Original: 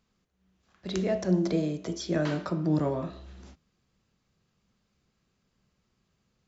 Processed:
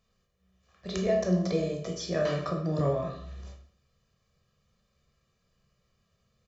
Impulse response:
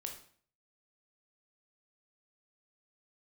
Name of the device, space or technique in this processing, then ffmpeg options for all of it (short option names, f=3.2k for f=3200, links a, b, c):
microphone above a desk: -filter_complex "[0:a]aecho=1:1:1.7:0.64[a];[1:a]atrim=start_sample=2205[b];[a][b]afir=irnorm=-1:irlink=0,volume=2dB"